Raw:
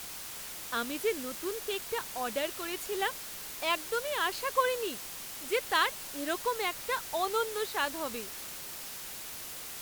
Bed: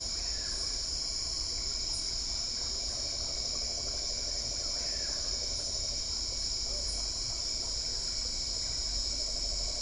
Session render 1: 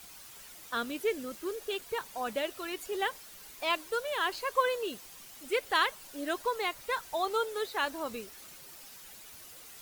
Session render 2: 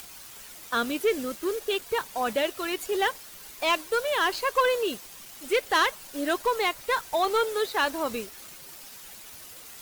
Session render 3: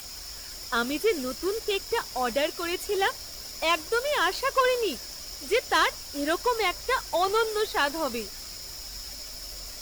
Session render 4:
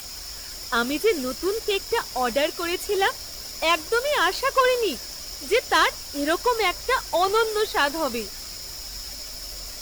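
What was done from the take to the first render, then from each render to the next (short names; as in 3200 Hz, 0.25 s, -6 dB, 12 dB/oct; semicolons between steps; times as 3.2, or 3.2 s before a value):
denoiser 10 dB, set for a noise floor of -43 dBFS
upward compressor, threshold -49 dBFS; sample leveller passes 2
add bed -7 dB
gain +3.5 dB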